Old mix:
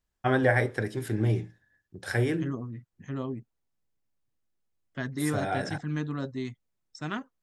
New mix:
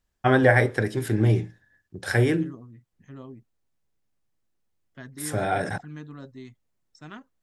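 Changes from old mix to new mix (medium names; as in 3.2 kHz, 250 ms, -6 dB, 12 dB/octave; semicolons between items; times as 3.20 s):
first voice +5.5 dB; second voice -8.5 dB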